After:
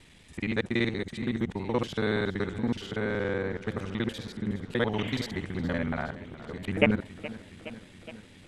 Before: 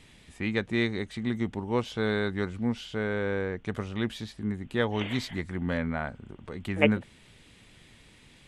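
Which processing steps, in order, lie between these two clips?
time reversed locally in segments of 47 ms; modulated delay 418 ms, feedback 70%, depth 75 cents, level -16 dB

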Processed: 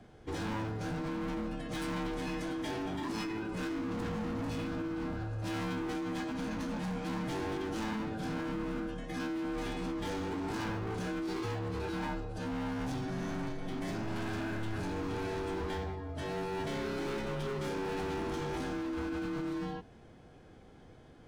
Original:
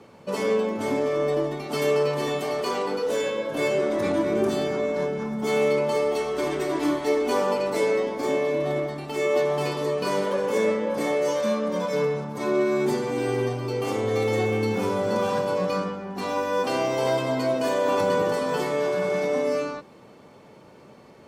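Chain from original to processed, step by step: overload inside the chain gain 28 dB; frequency shift -110 Hz; formant shift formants -5 st; trim -6 dB

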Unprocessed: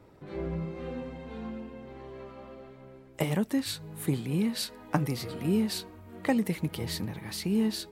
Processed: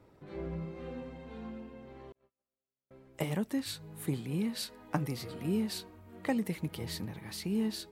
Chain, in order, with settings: 2.12–2.91 s: gate -39 dBFS, range -46 dB; trim -5 dB

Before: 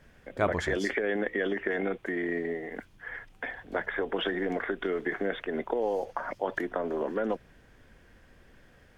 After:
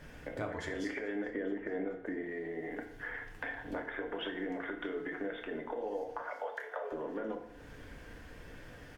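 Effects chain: 1.28–2.23 s: tilt shelf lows +7 dB, about 1.5 kHz; 6.22–6.92 s: steep high-pass 420 Hz 96 dB/octave; compression 5:1, threshold -45 dBFS, peak gain reduction 21.5 dB; on a send: feedback delay 429 ms, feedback 57%, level -24 dB; on the sum: FDN reverb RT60 0.74 s, low-frequency decay 0.95×, high-frequency decay 0.7×, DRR 2 dB; trim +5 dB

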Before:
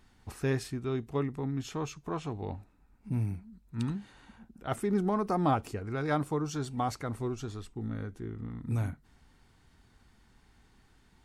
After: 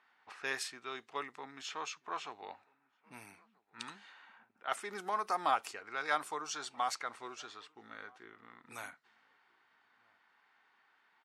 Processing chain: level-controlled noise filter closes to 1.9 kHz, open at -25.5 dBFS; high-pass 1.1 kHz 12 dB/octave; echo from a far wall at 220 m, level -27 dB; trim +4 dB

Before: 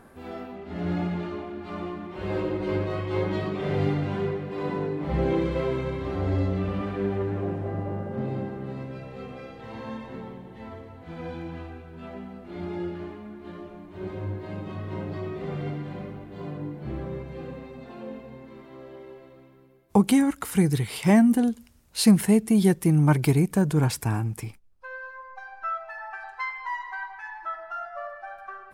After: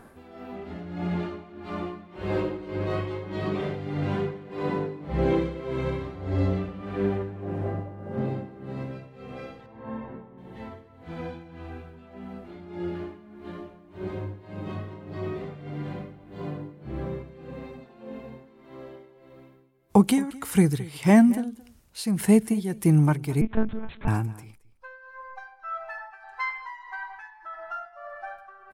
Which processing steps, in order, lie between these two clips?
9.66–10.38 s: low-pass 1.6 kHz 12 dB/octave; 26.95–27.72 s: compression 2.5:1, threshold -35 dBFS, peak gain reduction 4.5 dB; tremolo 1.7 Hz, depth 78%; delay 220 ms -20 dB; 23.41–24.08 s: monotone LPC vocoder at 8 kHz 220 Hz; trim +2 dB

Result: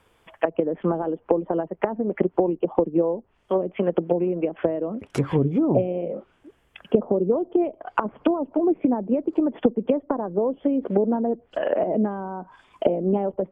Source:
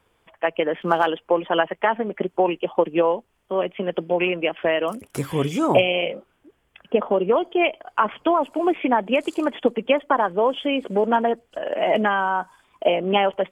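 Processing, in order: low-pass that closes with the level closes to 360 Hz, closed at -18.5 dBFS; trim +3.5 dB

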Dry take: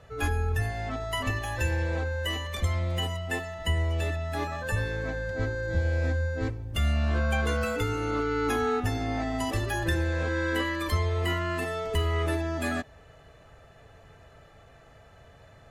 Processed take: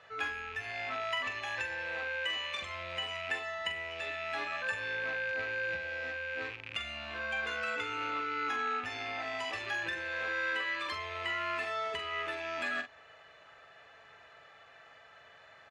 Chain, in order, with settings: rattle on loud lows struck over -35 dBFS, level -31 dBFS; treble shelf 2.1 kHz +9.5 dB; compression, threshold -28 dBFS, peak gain reduction 8 dB; band-pass filter 1.7 kHz, Q 0.74; distance through air 74 m; doubling 44 ms -7.5 dB

